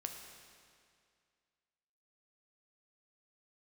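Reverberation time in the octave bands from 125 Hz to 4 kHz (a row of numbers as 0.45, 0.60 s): 2.2, 2.2, 2.2, 2.2, 2.1, 2.0 s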